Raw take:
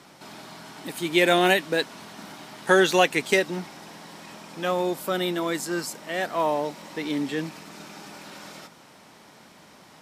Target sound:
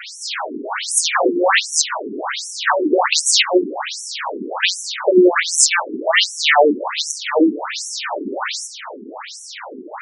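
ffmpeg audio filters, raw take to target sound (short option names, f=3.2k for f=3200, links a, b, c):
-af "lowshelf=f=140:g=-6.5,aeval=exprs='0.531*sin(PI/2*10*val(0)/0.531)':c=same,adynamicequalizer=threshold=0.0224:dfrequency=5100:dqfactor=5.8:tfrequency=5100:tqfactor=5.8:attack=5:release=100:ratio=0.375:range=1.5:mode=cutabove:tftype=bell,afftfilt=real='re*between(b*sr/1024,300*pow(7900/300,0.5+0.5*sin(2*PI*1.3*pts/sr))/1.41,300*pow(7900/300,0.5+0.5*sin(2*PI*1.3*pts/sr))*1.41)':imag='im*between(b*sr/1024,300*pow(7900/300,0.5+0.5*sin(2*PI*1.3*pts/sr))/1.41,300*pow(7900/300,0.5+0.5*sin(2*PI*1.3*pts/sr))*1.41)':win_size=1024:overlap=0.75,volume=2.5dB"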